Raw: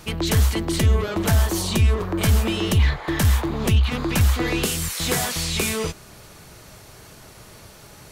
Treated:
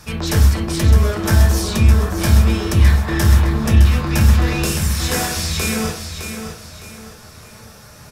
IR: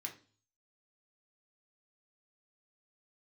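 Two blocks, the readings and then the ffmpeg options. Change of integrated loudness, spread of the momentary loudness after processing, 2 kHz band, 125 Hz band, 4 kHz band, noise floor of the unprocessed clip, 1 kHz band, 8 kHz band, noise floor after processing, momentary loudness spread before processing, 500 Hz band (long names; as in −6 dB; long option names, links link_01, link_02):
+5.5 dB, 13 LU, +3.5 dB, +6.5 dB, +1.5 dB, −46 dBFS, +3.5 dB, +2.5 dB, −42 dBFS, 3 LU, +2.0 dB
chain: -filter_complex "[0:a]aecho=1:1:611|1222|1833|2444:0.398|0.139|0.0488|0.0171[link_01];[1:a]atrim=start_sample=2205,asetrate=29988,aresample=44100[link_02];[link_01][link_02]afir=irnorm=-1:irlink=0,volume=2dB"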